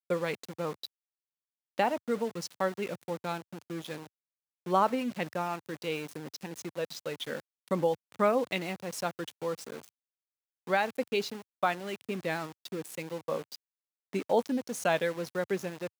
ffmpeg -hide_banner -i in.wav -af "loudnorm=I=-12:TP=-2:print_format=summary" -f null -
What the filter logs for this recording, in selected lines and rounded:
Input Integrated:    -33.0 LUFS
Input True Peak:     -12.4 dBTP
Input LRA:             2.1 LU
Input Threshold:     -43.3 LUFS